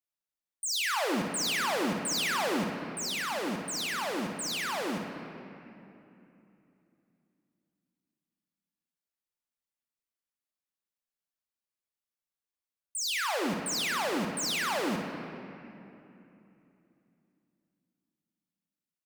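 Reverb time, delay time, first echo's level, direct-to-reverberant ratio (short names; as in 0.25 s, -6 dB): 2.9 s, 61 ms, -8.5 dB, 2.0 dB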